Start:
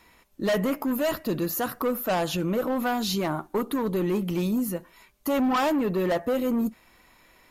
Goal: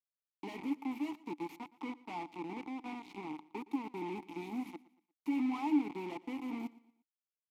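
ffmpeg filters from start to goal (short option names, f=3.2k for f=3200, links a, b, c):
-filter_complex "[0:a]asplit=3[a][b][c];[a]afade=t=out:st=1.55:d=0.02[d];[b]adynamicsmooth=sensitivity=4:basefreq=1.1k,afade=t=in:st=1.55:d=0.02,afade=t=out:st=3.32:d=0.02[e];[c]afade=t=in:st=3.32:d=0.02[f];[d][e][f]amix=inputs=3:normalize=0,aemphasis=mode=production:type=cd,acrusher=bits=3:mix=0:aa=0.000001,asplit=3[g][h][i];[g]bandpass=f=300:t=q:w=8,volume=0dB[j];[h]bandpass=f=870:t=q:w=8,volume=-6dB[k];[i]bandpass=f=2.24k:t=q:w=8,volume=-9dB[l];[j][k][l]amix=inputs=3:normalize=0,asplit=2[m][n];[n]aecho=0:1:117|234|351:0.0944|0.0368|0.0144[o];[m][o]amix=inputs=2:normalize=0,volume=-4.5dB"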